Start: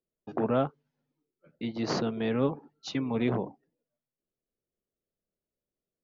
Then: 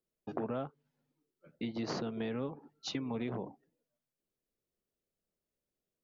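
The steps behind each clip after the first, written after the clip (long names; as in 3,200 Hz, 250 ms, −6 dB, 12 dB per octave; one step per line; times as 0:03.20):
downward compressor 6 to 1, threshold −34 dBFS, peak gain reduction 12.5 dB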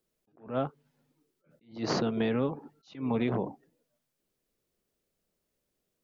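level that may rise only so fast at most 170 dB per second
level +8.5 dB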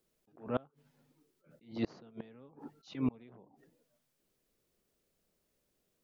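gate with flip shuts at −23 dBFS, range −29 dB
level +2 dB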